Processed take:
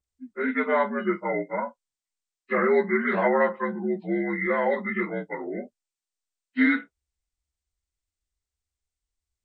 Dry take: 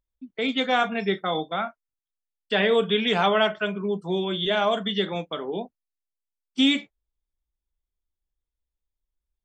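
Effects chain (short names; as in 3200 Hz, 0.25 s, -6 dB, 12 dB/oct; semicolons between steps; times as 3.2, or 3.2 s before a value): inharmonic rescaling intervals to 80%; high shelf 6400 Hz +7.5 dB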